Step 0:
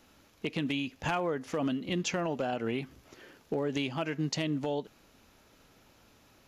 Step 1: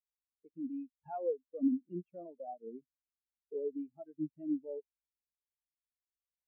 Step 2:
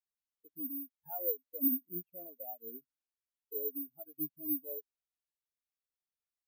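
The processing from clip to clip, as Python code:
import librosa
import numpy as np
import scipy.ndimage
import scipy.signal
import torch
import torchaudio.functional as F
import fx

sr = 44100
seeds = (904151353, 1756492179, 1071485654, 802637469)

y1 = fx.add_hum(x, sr, base_hz=50, snr_db=14)
y1 = fx.bass_treble(y1, sr, bass_db=-4, treble_db=-14)
y1 = fx.spectral_expand(y1, sr, expansion=4.0)
y1 = y1 * 10.0 ** (-2.5 / 20.0)
y2 = (np.kron(scipy.signal.resample_poly(y1, 1, 3), np.eye(3)[0]) * 3)[:len(y1)]
y2 = y2 * 10.0 ** (-5.0 / 20.0)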